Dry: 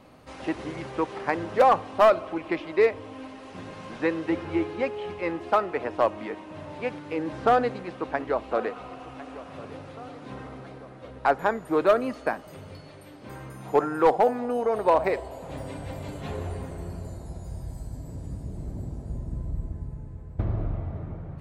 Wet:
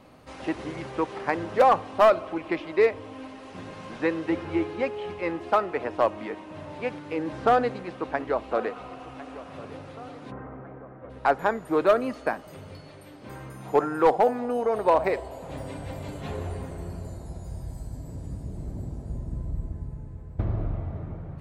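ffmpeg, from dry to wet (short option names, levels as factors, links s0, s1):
-filter_complex "[0:a]asplit=3[s0][s1][s2];[s0]afade=t=out:st=10.3:d=0.02[s3];[s1]lowpass=f=1800:w=0.5412,lowpass=f=1800:w=1.3066,afade=t=in:st=10.3:d=0.02,afade=t=out:st=11.09:d=0.02[s4];[s2]afade=t=in:st=11.09:d=0.02[s5];[s3][s4][s5]amix=inputs=3:normalize=0"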